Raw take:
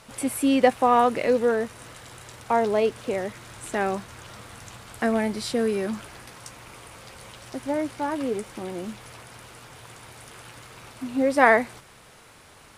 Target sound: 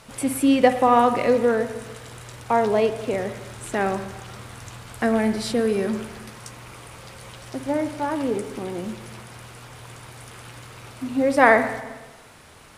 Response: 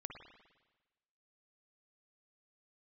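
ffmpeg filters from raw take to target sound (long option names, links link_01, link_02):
-filter_complex "[0:a]asplit=2[link_01][link_02];[1:a]atrim=start_sample=2205,lowshelf=frequency=340:gain=4[link_03];[link_02][link_03]afir=irnorm=-1:irlink=0,volume=3.5dB[link_04];[link_01][link_04]amix=inputs=2:normalize=0,volume=-3.5dB"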